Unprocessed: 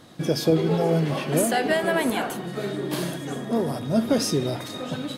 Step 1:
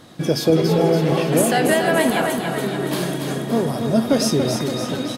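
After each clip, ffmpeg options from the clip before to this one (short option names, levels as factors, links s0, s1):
-af "aecho=1:1:284|568|852|1136|1420|1704|1988:0.501|0.281|0.157|0.088|0.0493|0.0276|0.0155,volume=1.58"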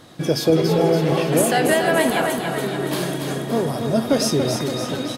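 -af "equalizer=f=210:w=2.6:g=-4"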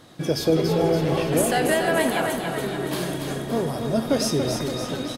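-filter_complex "[0:a]asplit=6[s0][s1][s2][s3][s4][s5];[s1]adelay=92,afreqshift=-66,volume=0.141[s6];[s2]adelay=184,afreqshift=-132,volume=0.0794[s7];[s3]adelay=276,afreqshift=-198,volume=0.0442[s8];[s4]adelay=368,afreqshift=-264,volume=0.0248[s9];[s5]adelay=460,afreqshift=-330,volume=0.014[s10];[s0][s6][s7][s8][s9][s10]amix=inputs=6:normalize=0,volume=0.668"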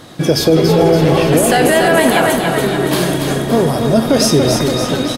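-af "alimiter=level_in=4.47:limit=0.891:release=50:level=0:latency=1,volume=0.891"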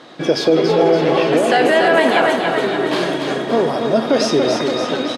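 -af "highpass=290,lowpass=4200,volume=0.891"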